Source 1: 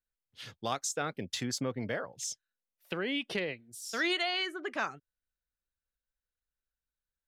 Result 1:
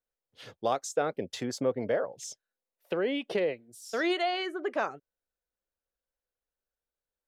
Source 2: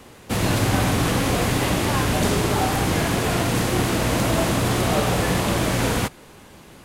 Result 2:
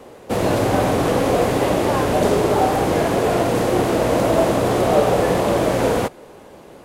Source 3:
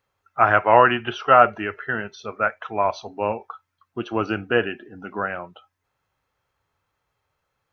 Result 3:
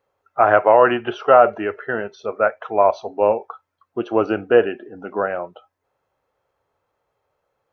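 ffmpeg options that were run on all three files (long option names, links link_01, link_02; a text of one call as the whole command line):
ffmpeg -i in.wav -af "equalizer=frequency=530:width=0.7:gain=14,alimiter=level_in=-3.5dB:limit=-1dB:release=50:level=0:latency=1,volume=-1dB" out.wav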